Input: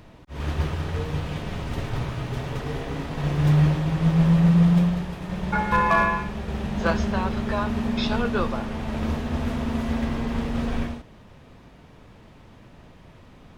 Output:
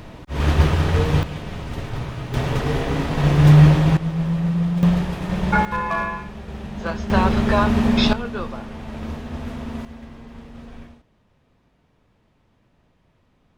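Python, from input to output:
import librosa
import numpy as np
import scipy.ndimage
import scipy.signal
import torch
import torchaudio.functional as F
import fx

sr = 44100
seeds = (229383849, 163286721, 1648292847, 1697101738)

y = fx.gain(x, sr, db=fx.steps((0.0, 9.5), (1.23, 0.0), (2.34, 8.0), (3.97, -4.0), (4.83, 6.5), (5.65, -4.0), (7.1, 8.0), (8.13, -4.0), (9.85, -13.5)))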